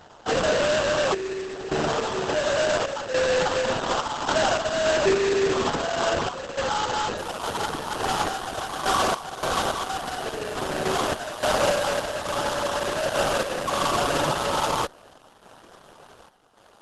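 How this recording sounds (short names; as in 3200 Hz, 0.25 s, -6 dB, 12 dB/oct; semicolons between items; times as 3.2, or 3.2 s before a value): random-step tremolo, depth 80%; aliases and images of a low sample rate 2200 Hz, jitter 20%; Opus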